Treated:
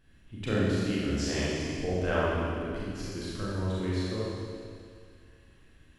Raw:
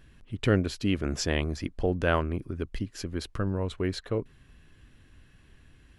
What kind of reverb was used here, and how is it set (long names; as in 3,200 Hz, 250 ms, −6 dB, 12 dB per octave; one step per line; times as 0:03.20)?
four-comb reverb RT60 2.2 s, combs from 29 ms, DRR −8.5 dB
level −10 dB